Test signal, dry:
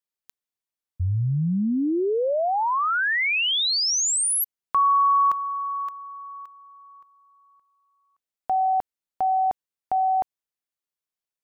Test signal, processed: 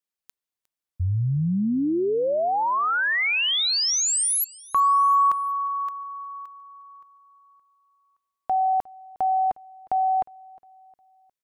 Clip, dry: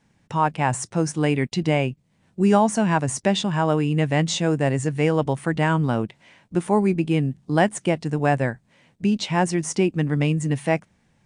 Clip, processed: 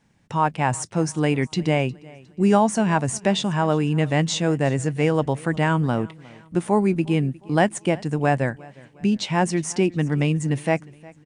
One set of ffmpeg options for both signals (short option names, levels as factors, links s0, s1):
-af "aecho=1:1:358|716|1074:0.0708|0.0304|0.0131"